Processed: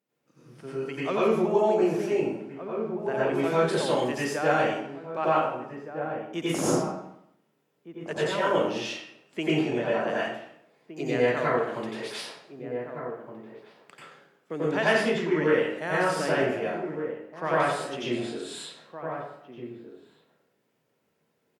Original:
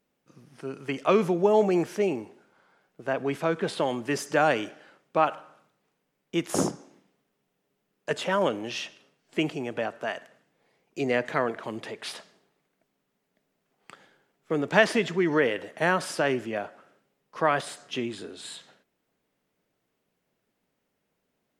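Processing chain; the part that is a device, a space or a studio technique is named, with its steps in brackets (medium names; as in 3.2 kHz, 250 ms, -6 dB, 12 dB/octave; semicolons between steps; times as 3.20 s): 3.41–4.12 s: treble shelf 3.8 kHz +7 dB; 9.51–10.07 s: Bessel low-pass 9 kHz; echo from a far wall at 260 m, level -11 dB; far laptop microphone (reverberation RT60 0.75 s, pre-delay 84 ms, DRR -8 dB; high-pass 110 Hz; level rider gain up to 4 dB); trim -9 dB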